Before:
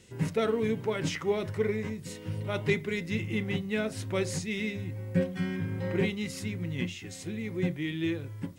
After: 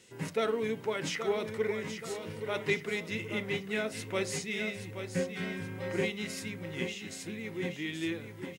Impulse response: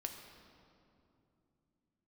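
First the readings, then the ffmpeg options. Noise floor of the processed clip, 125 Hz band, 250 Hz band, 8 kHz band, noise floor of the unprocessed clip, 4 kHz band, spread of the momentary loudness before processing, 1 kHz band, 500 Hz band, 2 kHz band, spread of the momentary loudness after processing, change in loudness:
-47 dBFS, -8.5 dB, -5.5 dB, +0.5 dB, -44 dBFS, +0.5 dB, 7 LU, 0.0 dB, -2.0 dB, +0.5 dB, 7 LU, -3.0 dB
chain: -af "highpass=f=400:p=1,aecho=1:1:826|1652|2478|3304|4130:0.355|0.167|0.0784|0.0368|0.0173"

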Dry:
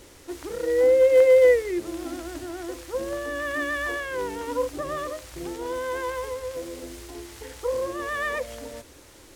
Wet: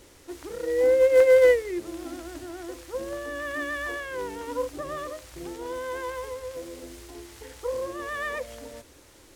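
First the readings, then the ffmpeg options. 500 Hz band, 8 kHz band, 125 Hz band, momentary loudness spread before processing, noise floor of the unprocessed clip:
-1.5 dB, -3.0 dB, -3.0 dB, 22 LU, -50 dBFS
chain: -af "aeval=exprs='0.355*(cos(1*acos(clip(val(0)/0.355,-1,1)))-cos(1*PI/2))+0.0398*(cos(3*acos(clip(val(0)/0.355,-1,1)))-cos(3*PI/2))':c=same"

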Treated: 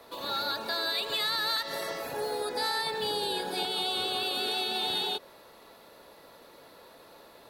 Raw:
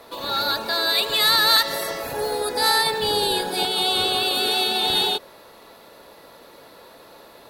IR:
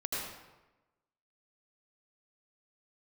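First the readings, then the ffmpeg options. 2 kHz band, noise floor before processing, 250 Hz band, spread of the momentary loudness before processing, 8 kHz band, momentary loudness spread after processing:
-10.0 dB, -48 dBFS, -9.0 dB, 10 LU, -13.0 dB, 6 LU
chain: -filter_complex "[0:a]acrossover=split=110|6300[a][b][c];[a]acompressor=threshold=-60dB:ratio=4[d];[b]acompressor=threshold=-21dB:ratio=4[e];[c]acompressor=threshold=-40dB:ratio=4[f];[d][e][f]amix=inputs=3:normalize=0,volume=-6.5dB"

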